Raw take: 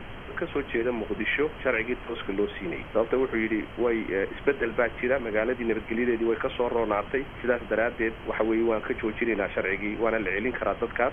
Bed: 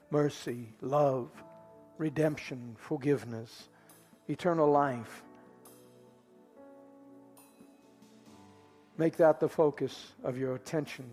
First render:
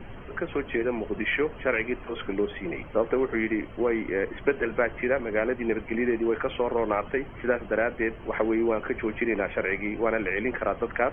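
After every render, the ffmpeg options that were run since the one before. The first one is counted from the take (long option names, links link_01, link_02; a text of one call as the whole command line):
ffmpeg -i in.wav -af "afftdn=noise_reduction=11:noise_floor=-41" out.wav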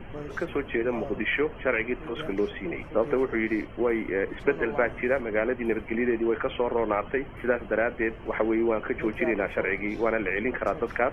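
ffmpeg -i in.wav -i bed.wav -filter_complex "[1:a]volume=-10.5dB[link_01];[0:a][link_01]amix=inputs=2:normalize=0" out.wav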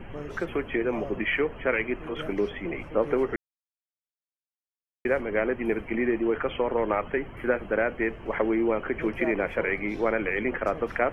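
ffmpeg -i in.wav -filter_complex "[0:a]asplit=3[link_01][link_02][link_03];[link_01]atrim=end=3.36,asetpts=PTS-STARTPTS,afade=type=out:start_time=3.356:duration=0.004:curve=hsin[link_04];[link_02]atrim=start=3.36:end=5.05,asetpts=PTS-STARTPTS,volume=0[link_05];[link_03]atrim=start=5.05,asetpts=PTS-STARTPTS,afade=type=in:duration=0.004:curve=hsin[link_06];[link_04][link_05][link_06]concat=n=3:v=0:a=1" out.wav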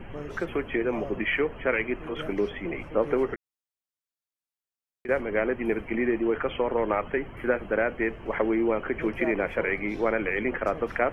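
ffmpeg -i in.wav -filter_complex "[0:a]asettb=1/sr,asplit=3[link_01][link_02][link_03];[link_01]atrim=end=3.344[link_04];[link_02]atrim=start=3.34:end=5.09,asetpts=PTS-STARTPTS,afade=type=in:duration=0.004:curve=qsin,afade=type=out:start_time=1.746:duration=0.004:curve=qsin,acompressor=threshold=-45dB:ratio=2:attack=3.2:release=140:knee=1:detection=peak[link_05];[link_03]atrim=start=5.086[link_06];[link_04][link_05]acrossfade=duration=0.004:curve1=hsin:curve2=qsin[link_07];[link_07][link_06]acrossfade=duration=0.004:curve1=qsin:curve2=hsin" out.wav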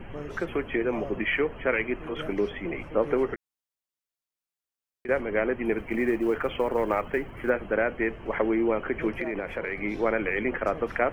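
ffmpeg -i in.wav -filter_complex "[0:a]asettb=1/sr,asplit=3[link_01][link_02][link_03];[link_01]atrim=end=5.784[link_04];[link_02]atrim=start=5.78:end=7.5,asetpts=PTS-STARTPTS,afade=type=in:duration=0.004:curve=qsin,afade=type=out:start_time=1.716:duration=0.004:curve=qsin,acrusher=bits=9:mode=log:mix=0:aa=0.000001[link_05];[link_03]atrim=start=7.496[link_06];[link_04][link_05]acrossfade=duration=0.004:curve1=hsin:curve2=qsin[link_07];[link_07][link_06]acrossfade=duration=0.004:curve1=qsin:curve2=hsin,asettb=1/sr,asplit=3[link_08][link_09][link_10];[link_08]atrim=end=9.134[link_11];[link_09]atrim=start=9.13:end=9.8,asetpts=PTS-STARTPTS,afade=type=in:duration=0.004:curve=qsin,afade=type=out:start_time=0.666:duration=0.004:curve=qsin,acompressor=threshold=-26dB:ratio=6:attack=3.2:release=140:knee=1:detection=peak[link_12];[link_10]atrim=start=9.796[link_13];[link_11][link_12]acrossfade=duration=0.004:curve1=hsin:curve2=qsin[link_14];[link_14][link_13]acrossfade=duration=0.004:curve1=qsin:curve2=hsin" out.wav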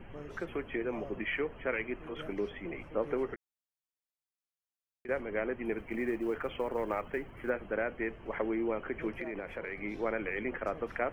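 ffmpeg -i in.wav -af "volume=-8dB" out.wav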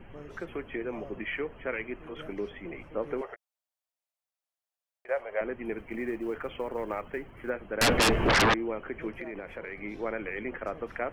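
ffmpeg -i in.wav -filter_complex "[0:a]asettb=1/sr,asplit=3[link_01][link_02][link_03];[link_01]atrim=end=3.214[link_04];[link_02]atrim=start=3.21:end=5.41,asetpts=PTS-STARTPTS,afade=type=in:duration=0.004:curve=qsin,afade=type=out:start_time=2.196:duration=0.004:curve=qsin,lowshelf=frequency=410:width_type=q:width=3:gain=-14[link_05];[link_03]atrim=start=5.406[link_06];[link_04][link_05]acrossfade=duration=0.004:curve1=hsin:curve2=qsin[link_07];[link_07][link_06]acrossfade=duration=0.004:curve1=qsin:curve2=hsin,asettb=1/sr,asplit=3[link_08][link_09][link_10];[link_08]atrim=end=7.814[link_11];[link_09]atrim=start=7.81:end=8.54,asetpts=PTS-STARTPTS,afade=type=in:duration=0.004:curve=qsin,afade=type=out:start_time=0.726:duration=0.004:curve=qsin,aeval=exprs='0.119*sin(PI/2*10*val(0)/0.119)':channel_layout=same[link_12];[link_10]atrim=start=8.536[link_13];[link_11][link_12]acrossfade=duration=0.004:curve1=hsin:curve2=qsin[link_14];[link_14][link_13]acrossfade=duration=0.004:curve1=qsin:curve2=hsin" out.wav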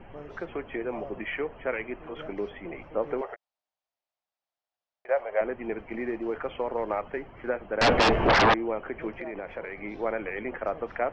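ffmpeg -i in.wav -af "lowpass=frequency=5400:width=0.5412,lowpass=frequency=5400:width=1.3066,equalizer=frequency=740:width_type=o:width=1.2:gain=7" out.wav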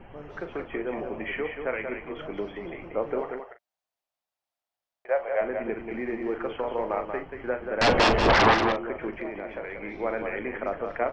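ffmpeg -i in.wav -filter_complex "[0:a]asplit=2[link_01][link_02];[link_02]adelay=40,volume=-10dB[link_03];[link_01][link_03]amix=inputs=2:normalize=0,asplit=2[link_04][link_05];[link_05]aecho=0:1:184:0.473[link_06];[link_04][link_06]amix=inputs=2:normalize=0" out.wav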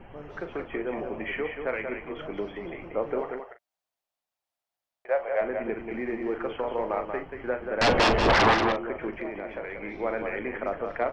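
ffmpeg -i in.wav -af "asoftclip=type=tanh:threshold=-11dB" out.wav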